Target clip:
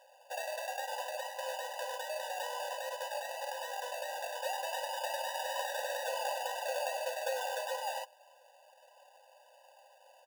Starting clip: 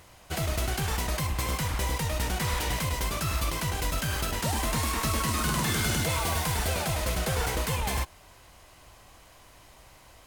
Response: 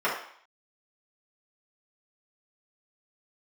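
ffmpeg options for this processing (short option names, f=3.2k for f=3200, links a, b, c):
-af "equalizer=f=250:t=o:w=1:g=5,equalizer=f=2k:t=o:w=1:g=-12,equalizer=f=8k:t=o:w=1:g=-11,acrusher=samples=22:mix=1:aa=0.000001,aecho=1:1:3.7:0.37,afftfilt=real='re*eq(mod(floor(b*sr/1024/500),2),1)':imag='im*eq(mod(floor(b*sr/1024/500),2),1)':win_size=1024:overlap=0.75"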